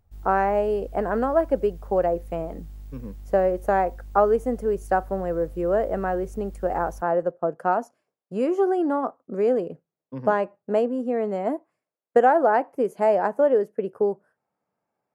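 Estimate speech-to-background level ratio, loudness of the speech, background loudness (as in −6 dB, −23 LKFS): 19.0 dB, −24.0 LKFS, −43.0 LKFS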